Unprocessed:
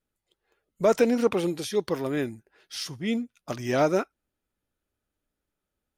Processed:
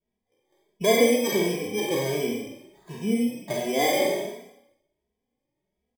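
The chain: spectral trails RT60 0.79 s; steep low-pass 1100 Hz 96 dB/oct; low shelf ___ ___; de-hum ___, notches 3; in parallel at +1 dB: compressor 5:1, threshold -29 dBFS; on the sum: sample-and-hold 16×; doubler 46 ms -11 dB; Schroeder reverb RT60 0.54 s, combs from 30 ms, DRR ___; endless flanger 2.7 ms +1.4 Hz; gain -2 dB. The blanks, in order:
67 Hz, -11 dB, 89.36 Hz, 1 dB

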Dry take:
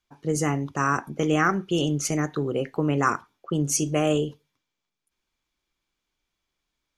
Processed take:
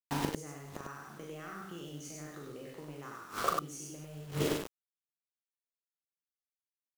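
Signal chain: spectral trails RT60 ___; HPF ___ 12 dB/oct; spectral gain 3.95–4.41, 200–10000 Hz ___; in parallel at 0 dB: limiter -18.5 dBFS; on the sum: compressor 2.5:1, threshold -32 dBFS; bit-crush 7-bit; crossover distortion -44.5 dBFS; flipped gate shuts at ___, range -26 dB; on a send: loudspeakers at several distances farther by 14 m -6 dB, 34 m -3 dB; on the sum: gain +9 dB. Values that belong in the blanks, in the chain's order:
0.67 s, 64 Hz, -14 dB, -25 dBFS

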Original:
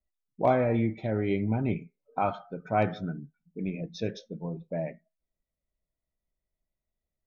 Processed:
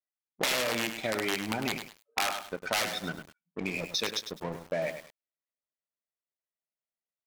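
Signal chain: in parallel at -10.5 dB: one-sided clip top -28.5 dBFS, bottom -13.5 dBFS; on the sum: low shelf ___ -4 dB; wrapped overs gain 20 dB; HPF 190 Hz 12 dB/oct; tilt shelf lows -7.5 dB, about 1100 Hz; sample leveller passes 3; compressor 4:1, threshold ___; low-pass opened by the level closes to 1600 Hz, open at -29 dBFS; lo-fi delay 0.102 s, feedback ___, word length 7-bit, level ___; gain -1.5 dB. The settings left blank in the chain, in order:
420 Hz, -27 dBFS, 35%, -8 dB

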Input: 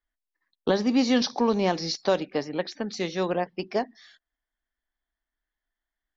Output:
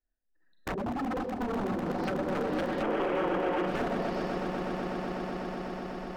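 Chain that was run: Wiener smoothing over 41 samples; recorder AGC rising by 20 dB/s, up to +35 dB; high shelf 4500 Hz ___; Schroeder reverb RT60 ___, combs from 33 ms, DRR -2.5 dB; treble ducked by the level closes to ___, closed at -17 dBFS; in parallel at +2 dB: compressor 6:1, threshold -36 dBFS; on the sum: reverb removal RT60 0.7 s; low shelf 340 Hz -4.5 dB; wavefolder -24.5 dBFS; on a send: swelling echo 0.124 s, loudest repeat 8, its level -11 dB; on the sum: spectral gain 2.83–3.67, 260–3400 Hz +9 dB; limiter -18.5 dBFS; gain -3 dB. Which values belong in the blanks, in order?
+9.5 dB, 1.7 s, 350 Hz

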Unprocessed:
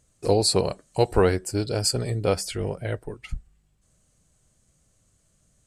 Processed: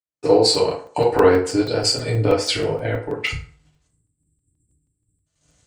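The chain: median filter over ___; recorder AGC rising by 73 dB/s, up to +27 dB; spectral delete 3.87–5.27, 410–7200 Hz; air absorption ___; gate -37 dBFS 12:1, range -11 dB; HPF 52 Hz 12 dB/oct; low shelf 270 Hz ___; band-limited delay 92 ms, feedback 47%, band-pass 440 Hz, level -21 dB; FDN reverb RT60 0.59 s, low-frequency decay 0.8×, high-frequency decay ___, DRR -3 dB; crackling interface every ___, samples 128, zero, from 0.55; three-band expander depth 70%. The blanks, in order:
3 samples, 80 m, -10.5 dB, 0.65×, 0.16 s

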